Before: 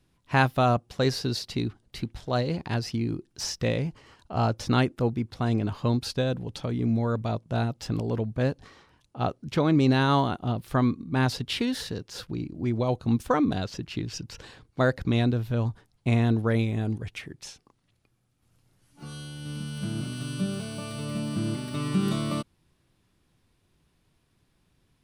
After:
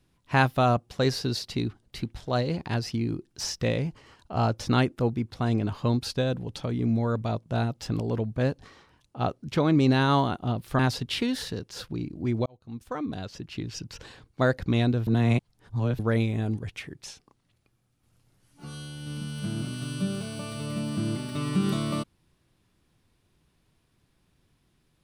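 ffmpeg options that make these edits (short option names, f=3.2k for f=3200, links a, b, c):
-filter_complex "[0:a]asplit=5[a][b][c][d][e];[a]atrim=end=10.792[f];[b]atrim=start=11.178:end=12.85,asetpts=PTS-STARTPTS,afade=t=out:st=1.668:d=0.004:c=hsin[g];[c]atrim=start=12.85:end=15.462,asetpts=PTS-STARTPTS,afade=t=in:d=1.51[h];[d]atrim=start=15.458:end=16.382,asetpts=PTS-STARTPTS,areverse[i];[e]atrim=start=16.378[j];[g][h]concat=n=2:v=0:a=1[k];[f][k]acrossfade=d=0.004:c1=hsin:c2=hsin[l];[l][i]acrossfade=d=0.004:c1=hsin:c2=hsin[m];[m][j]acrossfade=d=0.004:c1=hsin:c2=hsin"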